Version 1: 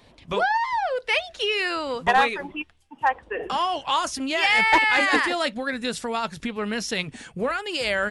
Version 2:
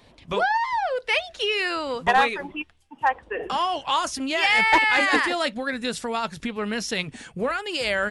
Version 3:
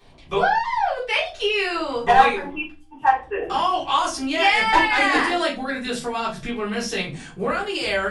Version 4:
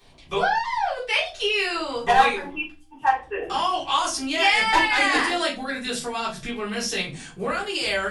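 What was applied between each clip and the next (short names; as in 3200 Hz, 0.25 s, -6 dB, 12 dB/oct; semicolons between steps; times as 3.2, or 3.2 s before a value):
nothing audible
shoebox room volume 150 m³, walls furnished, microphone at 3.6 m; gain -6 dB
high shelf 3000 Hz +8 dB; gain -3.5 dB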